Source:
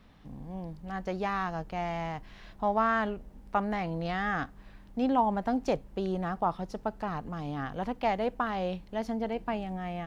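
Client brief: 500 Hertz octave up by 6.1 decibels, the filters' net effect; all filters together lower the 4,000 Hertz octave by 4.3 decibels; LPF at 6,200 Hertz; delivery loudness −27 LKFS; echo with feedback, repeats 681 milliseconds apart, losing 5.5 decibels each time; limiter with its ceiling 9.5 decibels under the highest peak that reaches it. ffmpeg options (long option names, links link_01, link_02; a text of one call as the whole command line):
ffmpeg -i in.wav -af "lowpass=6200,equalizer=frequency=500:width_type=o:gain=8,equalizer=frequency=4000:width_type=o:gain=-6,alimiter=limit=-20.5dB:level=0:latency=1,aecho=1:1:681|1362|2043|2724|3405|4086|4767:0.531|0.281|0.149|0.079|0.0419|0.0222|0.0118,volume=3dB" out.wav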